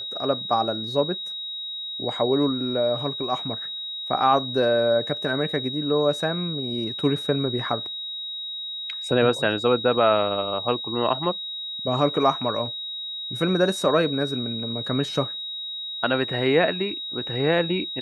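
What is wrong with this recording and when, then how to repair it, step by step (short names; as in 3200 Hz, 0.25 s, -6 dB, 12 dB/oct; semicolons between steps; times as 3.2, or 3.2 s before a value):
tone 3800 Hz -30 dBFS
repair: notch 3800 Hz, Q 30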